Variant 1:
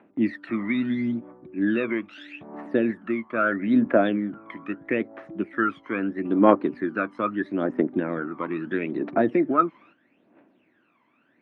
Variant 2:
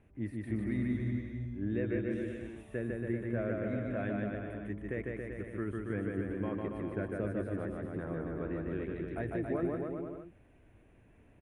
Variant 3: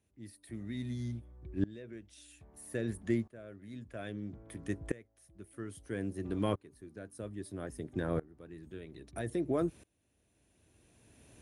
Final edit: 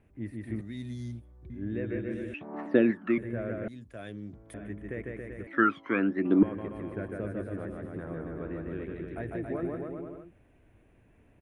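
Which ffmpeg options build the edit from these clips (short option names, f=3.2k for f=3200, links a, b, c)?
-filter_complex "[2:a]asplit=2[a][b];[0:a]asplit=2[c][d];[1:a]asplit=5[e][f][g][h][i];[e]atrim=end=0.612[j];[a]atrim=start=0.608:end=1.502[k];[f]atrim=start=1.498:end=2.342[l];[c]atrim=start=2.338:end=3.182[m];[g]atrim=start=3.178:end=3.682[n];[b]atrim=start=3.678:end=4.542[o];[h]atrim=start=4.538:end=5.472[p];[d]atrim=start=5.468:end=6.432[q];[i]atrim=start=6.428[r];[j][k]acrossfade=d=0.004:c1=hsin:c2=hsin[s];[s][l]acrossfade=d=0.004:c1=hsin:c2=hsin[t];[t][m]acrossfade=d=0.004:c1=hsin:c2=hsin[u];[u][n]acrossfade=d=0.004:c1=hsin:c2=hsin[v];[v][o]acrossfade=d=0.004:c1=hsin:c2=hsin[w];[w][p]acrossfade=d=0.004:c1=hsin:c2=hsin[x];[x][q]acrossfade=d=0.004:c1=hsin:c2=hsin[y];[y][r]acrossfade=d=0.004:c1=hsin:c2=hsin"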